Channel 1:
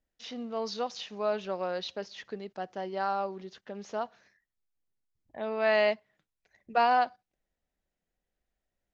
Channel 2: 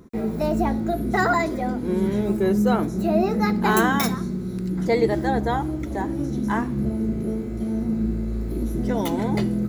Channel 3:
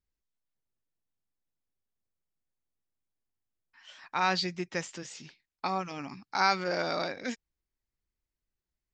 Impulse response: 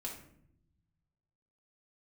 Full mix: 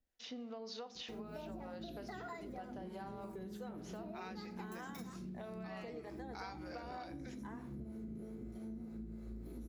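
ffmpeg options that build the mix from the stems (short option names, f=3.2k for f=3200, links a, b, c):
-filter_complex "[0:a]acompressor=threshold=-33dB:ratio=6,volume=-4dB,asplit=2[a][b];[b]volume=-6.5dB[c];[1:a]adelay=950,volume=-13.5dB,asplit=2[d][e];[e]volume=-14dB[f];[2:a]volume=-18dB,asplit=2[g][h];[h]volume=-4dB[i];[a][d]amix=inputs=2:normalize=0,acompressor=threshold=-40dB:ratio=6,volume=0dB[j];[3:a]atrim=start_sample=2205[k];[c][f][i]amix=inputs=3:normalize=0[l];[l][k]afir=irnorm=-1:irlink=0[m];[g][j][m]amix=inputs=3:normalize=0,acrossover=split=450[n][o];[n]aeval=exprs='val(0)*(1-0.5/2+0.5/2*cos(2*PI*3.2*n/s))':c=same[p];[o]aeval=exprs='val(0)*(1-0.5/2-0.5/2*cos(2*PI*3.2*n/s))':c=same[q];[p][q]amix=inputs=2:normalize=0,acompressor=threshold=-43dB:ratio=6"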